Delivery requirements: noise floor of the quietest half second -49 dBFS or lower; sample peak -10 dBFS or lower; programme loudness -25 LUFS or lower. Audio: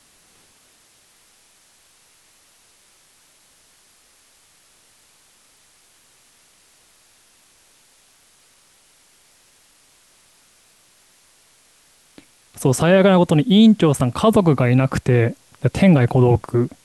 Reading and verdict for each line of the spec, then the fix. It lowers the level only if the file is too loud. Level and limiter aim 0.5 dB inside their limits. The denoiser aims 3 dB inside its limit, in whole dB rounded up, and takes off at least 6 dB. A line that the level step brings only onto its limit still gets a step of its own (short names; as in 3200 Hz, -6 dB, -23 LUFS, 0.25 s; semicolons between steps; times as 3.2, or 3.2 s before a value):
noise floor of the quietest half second -55 dBFS: OK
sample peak -4.5 dBFS: fail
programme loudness -16.0 LUFS: fail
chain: gain -9.5 dB